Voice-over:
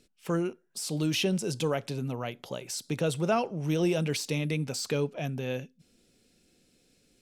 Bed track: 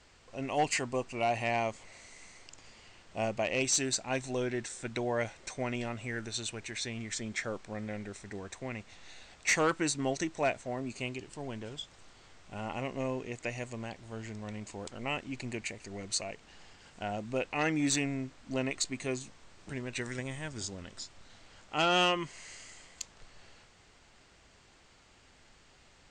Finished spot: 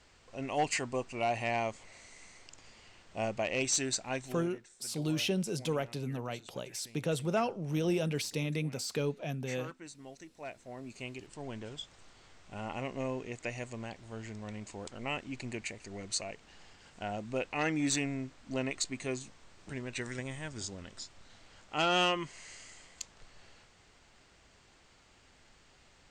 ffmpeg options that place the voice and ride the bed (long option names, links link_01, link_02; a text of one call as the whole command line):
ffmpeg -i stem1.wav -i stem2.wav -filter_complex "[0:a]adelay=4050,volume=-4dB[link_01];[1:a]volume=14.5dB,afade=type=out:start_time=4.05:duration=0.49:silence=0.158489,afade=type=in:start_time=10.35:duration=1.21:silence=0.158489[link_02];[link_01][link_02]amix=inputs=2:normalize=0" out.wav